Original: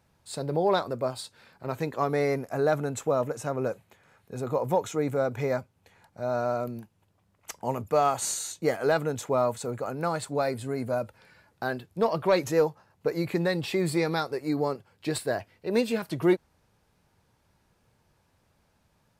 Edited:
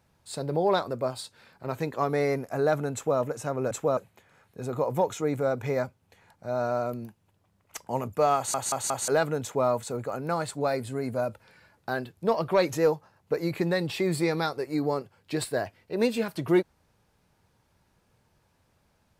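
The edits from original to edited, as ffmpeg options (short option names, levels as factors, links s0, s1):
-filter_complex "[0:a]asplit=7[s0][s1][s2][s3][s4][s5][s6];[s0]atrim=end=3.712[s7];[s1]atrim=start=2.938:end=3.202[s8];[s2]atrim=start=3.708:end=8.282[s9];[s3]atrim=start=8.098:end=8.282[s10];[s4]atrim=start=8.098:end=8.282[s11];[s5]atrim=start=8.098:end=8.282[s12];[s6]atrim=start=8.818[s13];[s7][s8]acrossfade=d=0.004:c1=hsin:c2=hsin[s14];[s14][s9]acrossfade=d=0.004:c1=hsin:c2=hsin[s15];[s15][s10]acrossfade=d=0.004:c1=hsin:c2=hsin[s16];[s16][s11]acrossfade=d=0.004:c1=hsin:c2=hsin[s17];[s17][s12]acrossfade=d=0.004:c1=hsin:c2=hsin[s18];[s18][s13]acrossfade=d=0.004:c1=hsin:c2=hsin"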